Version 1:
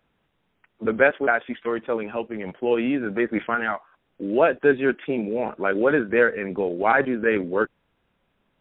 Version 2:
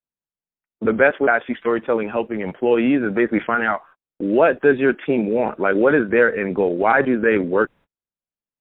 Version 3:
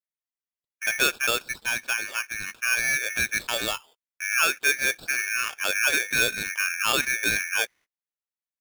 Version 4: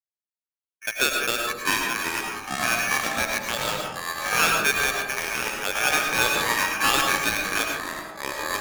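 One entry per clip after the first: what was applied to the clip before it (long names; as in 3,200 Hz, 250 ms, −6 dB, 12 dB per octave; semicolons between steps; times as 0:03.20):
noise gate −46 dBFS, range −37 dB; parametric band 3,200 Hz −3 dB; in parallel at +0.5 dB: brickwall limiter −15.5 dBFS, peak gain reduction 11 dB
ring modulator with a square carrier 2,000 Hz; level −8 dB
delay with pitch and tempo change per echo 239 ms, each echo −6 semitones, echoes 3; harmonic generator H 4 −35 dB, 7 −19 dB, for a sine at −8.5 dBFS; comb and all-pass reverb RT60 0.89 s, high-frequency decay 0.3×, pre-delay 65 ms, DRR 1.5 dB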